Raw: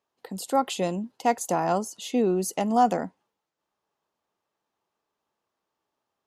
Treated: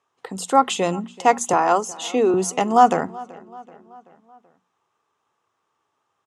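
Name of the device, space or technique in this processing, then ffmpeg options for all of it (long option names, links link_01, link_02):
car door speaker: -filter_complex "[0:a]asettb=1/sr,asplit=3[link_01][link_02][link_03];[link_01]atrim=end=1.534[link_04];[link_02]atrim=start=1.53:end=2.34,asetpts=PTS-STARTPTS,afade=type=in:duration=0.004:curve=qsin,afade=type=out:start_time=0.806:duration=0.004:curve=qsin,highpass=frequency=240:width=0.5412,highpass=frequency=240:width=1.3066[link_05];[link_03]atrim=start=2.336[link_06];[link_04][link_05]acrossfade=duration=0.004:curve1=hsin:curve2=qsin[link_07];[link_07][link_06]acrossfade=duration=0.004:curve1=qsin:curve2=hsin,highpass=84,equalizer=frequency=110:width_type=q:width=4:gain=4,equalizer=frequency=210:width_type=q:width=4:gain=-7,equalizer=frequency=310:width_type=q:width=4:gain=-4,equalizer=frequency=600:width_type=q:width=4:gain=-6,equalizer=frequency=1200:width_type=q:width=4:gain=6,equalizer=frequency=4500:width_type=q:width=4:gain=-8,lowpass=frequency=9000:width=0.5412,lowpass=frequency=9000:width=1.3066,bandreject=frequency=60:width_type=h:width=6,bandreject=frequency=120:width_type=h:width=6,bandreject=frequency=180:width_type=h:width=6,bandreject=frequency=240:width_type=h:width=6,asplit=2[link_08][link_09];[link_09]adelay=381,lowpass=frequency=4300:poles=1,volume=-21dB,asplit=2[link_10][link_11];[link_11]adelay=381,lowpass=frequency=4300:poles=1,volume=0.55,asplit=2[link_12][link_13];[link_13]adelay=381,lowpass=frequency=4300:poles=1,volume=0.55,asplit=2[link_14][link_15];[link_15]adelay=381,lowpass=frequency=4300:poles=1,volume=0.55[link_16];[link_08][link_10][link_12][link_14][link_16]amix=inputs=5:normalize=0,volume=8.5dB"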